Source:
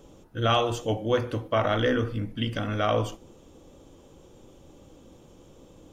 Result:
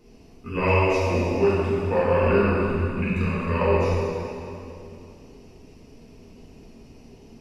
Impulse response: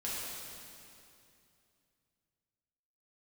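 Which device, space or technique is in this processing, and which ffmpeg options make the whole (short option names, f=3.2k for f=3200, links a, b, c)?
slowed and reverbed: -filter_complex "[0:a]asetrate=35280,aresample=44100[a];[1:a]atrim=start_sample=2205[b];[a][b]afir=irnorm=-1:irlink=0"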